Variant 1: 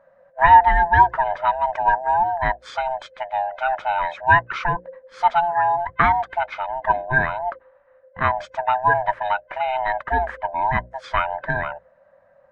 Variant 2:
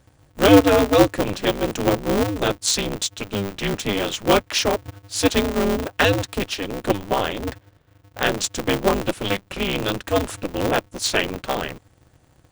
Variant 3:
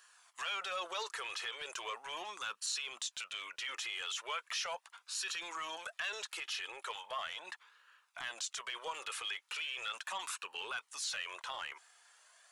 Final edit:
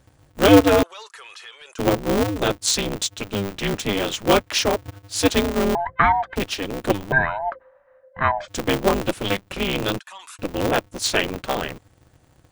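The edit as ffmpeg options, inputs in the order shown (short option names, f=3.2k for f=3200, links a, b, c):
-filter_complex "[2:a]asplit=2[a][b];[0:a]asplit=2[c][d];[1:a]asplit=5[e][f][g][h][i];[e]atrim=end=0.832[j];[a]atrim=start=0.828:end=1.792[k];[f]atrim=start=1.788:end=5.752[l];[c]atrim=start=5.748:end=6.362[m];[g]atrim=start=6.358:end=7.122[n];[d]atrim=start=7.118:end=8.482[o];[h]atrim=start=8.478:end=9.992[p];[b]atrim=start=9.988:end=10.392[q];[i]atrim=start=10.388[r];[j][k]acrossfade=d=0.004:c1=hsin:c2=hsin[s];[s][l]acrossfade=d=0.004:c1=hsin:c2=hsin[t];[t][m]acrossfade=d=0.004:c1=hsin:c2=hsin[u];[u][n]acrossfade=d=0.004:c1=hsin:c2=hsin[v];[v][o]acrossfade=d=0.004:c1=hsin:c2=hsin[w];[w][p]acrossfade=d=0.004:c1=hsin:c2=hsin[x];[x][q]acrossfade=d=0.004:c1=hsin:c2=hsin[y];[y][r]acrossfade=d=0.004:c1=hsin:c2=hsin"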